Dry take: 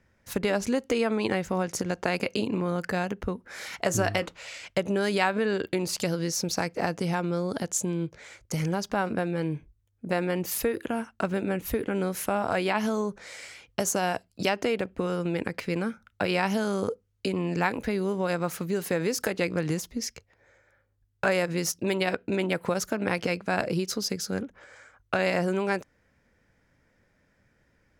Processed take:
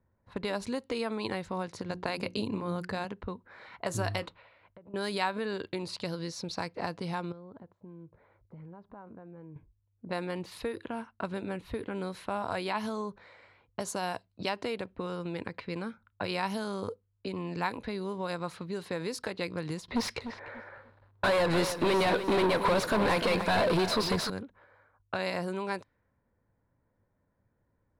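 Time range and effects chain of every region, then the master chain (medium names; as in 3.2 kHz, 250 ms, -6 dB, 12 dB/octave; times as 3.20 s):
1.89–3.05 s: bass shelf 270 Hz +6.5 dB + hum notches 60/120/180/240/300/360 Hz
4.34–4.94 s: compression 8:1, threshold -40 dBFS + distance through air 200 m
7.32–9.56 s: compression 2.5:1, threshold -41 dBFS + tape spacing loss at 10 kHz 32 dB
19.88–24.30 s: overdrive pedal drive 35 dB, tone 1.6 kHz, clips at -11 dBFS + bit-crushed delay 298 ms, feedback 35%, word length 7-bit, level -10 dB
whole clip: level-controlled noise filter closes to 980 Hz, open at -21.5 dBFS; graphic EQ with 31 bands 100 Hz +7 dB, 1 kHz +8 dB, 4 kHz +10 dB, 6.3 kHz -6 dB, 10 kHz +7 dB; trim -8 dB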